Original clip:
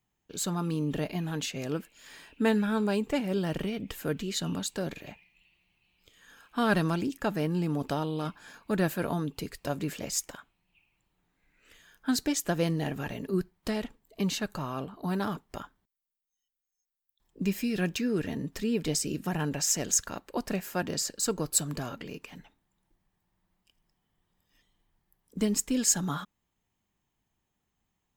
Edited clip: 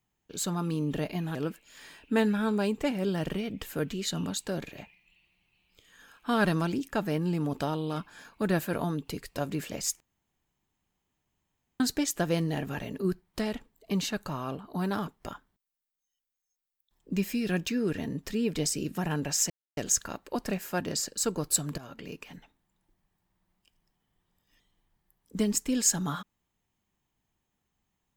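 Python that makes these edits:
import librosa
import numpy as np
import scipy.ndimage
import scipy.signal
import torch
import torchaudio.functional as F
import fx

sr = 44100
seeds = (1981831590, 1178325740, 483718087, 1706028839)

y = fx.edit(x, sr, fx.cut(start_s=1.35, length_s=0.29),
    fx.room_tone_fill(start_s=10.29, length_s=1.8),
    fx.insert_silence(at_s=19.79, length_s=0.27),
    fx.fade_in_from(start_s=21.8, length_s=0.33, floor_db=-14.0), tone=tone)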